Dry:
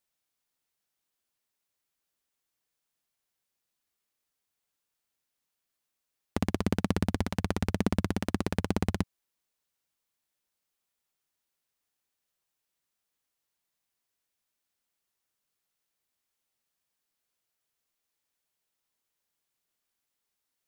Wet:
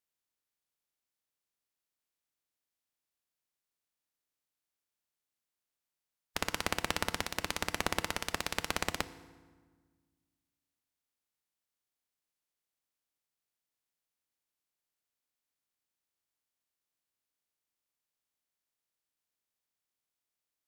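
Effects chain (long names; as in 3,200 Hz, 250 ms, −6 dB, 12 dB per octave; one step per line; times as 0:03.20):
ceiling on every frequency bin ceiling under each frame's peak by 25 dB
pitch vibrato 1.9 Hz 6.1 cents
feedback delay network reverb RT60 1.5 s, low-frequency decay 1.45×, high-frequency decay 0.7×, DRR 13 dB
level −6 dB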